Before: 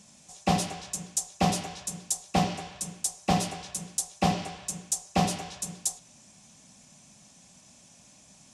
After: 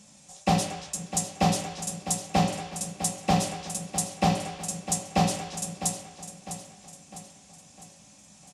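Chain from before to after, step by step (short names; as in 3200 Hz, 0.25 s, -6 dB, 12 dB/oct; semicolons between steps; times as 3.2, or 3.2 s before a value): feedback echo 0.654 s, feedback 49%, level -11 dB; reverb RT60 0.30 s, pre-delay 3 ms, DRR 5 dB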